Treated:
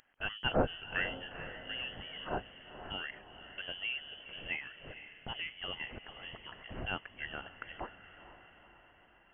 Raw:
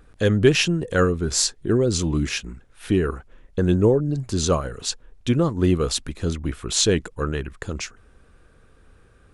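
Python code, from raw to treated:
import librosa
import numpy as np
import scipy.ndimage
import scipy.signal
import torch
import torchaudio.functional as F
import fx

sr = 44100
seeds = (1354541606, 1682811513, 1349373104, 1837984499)

y = np.diff(x, prepend=0.0)
y = fx.freq_invert(y, sr, carrier_hz=3200)
y = fx.echo_diffused(y, sr, ms=475, feedback_pct=57, wet_db=-12)
y = y * librosa.db_to_amplitude(3.5)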